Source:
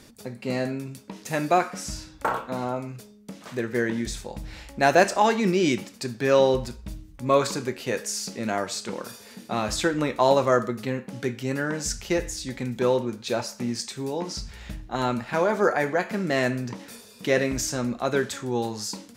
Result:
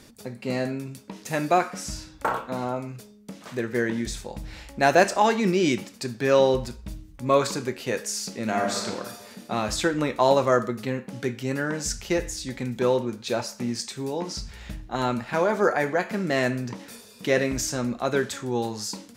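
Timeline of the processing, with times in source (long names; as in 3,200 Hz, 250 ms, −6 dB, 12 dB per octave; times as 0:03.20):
0:08.43–0:08.86: thrown reverb, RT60 1.5 s, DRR 0.5 dB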